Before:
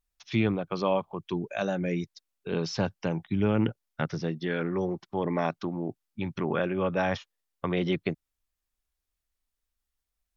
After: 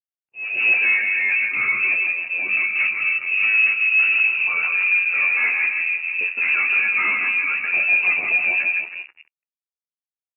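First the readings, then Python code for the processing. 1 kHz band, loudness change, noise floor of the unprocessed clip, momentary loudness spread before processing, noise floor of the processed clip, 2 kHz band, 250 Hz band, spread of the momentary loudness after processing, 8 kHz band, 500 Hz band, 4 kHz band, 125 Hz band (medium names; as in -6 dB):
0.0 dB, +13.0 dB, -85 dBFS, 8 LU, under -85 dBFS, +23.5 dB, under -15 dB, 6 LU, no reading, under -10 dB, +4.5 dB, under -20 dB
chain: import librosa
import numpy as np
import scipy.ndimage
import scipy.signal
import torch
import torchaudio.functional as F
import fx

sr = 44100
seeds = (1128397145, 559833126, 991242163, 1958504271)

p1 = fx.reverse_delay(x, sr, ms=542, wet_db=-2.0)
p2 = p1 + fx.echo_split(p1, sr, split_hz=360.0, low_ms=219, high_ms=161, feedback_pct=52, wet_db=-5, dry=0)
p3 = fx.rider(p2, sr, range_db=4, speed_s=2.0)
p4 = np.sign(p3) * np.maximum(np.abs(p3) - 10.0 ** (-40.5 / 20.0), 0.0)
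p5 = fx.comb_fb(p4, sr, f0_hz=74.0, decay_s=0.21, harmonics='all', damping=0.0, mix_pct=80)
p6 = fx.leveller(p5, sr, passes=5)
p7 = fx.freq_invert(p6, sr, carrier_hz=2800)
p8 = scipy.signal.sosfilt(scipy.signal.butter(2, 42.0, 'highpass', fs=sr, output='sos'), p7)
p9 = fx.auto_swell(p8, sr, attack_ms=378.0)
p10 = fx.low_shelf(p9, sr, hz=85.0, db=-10.0)
y = fx.spectral_expand(p10, sr, expansion=1.5)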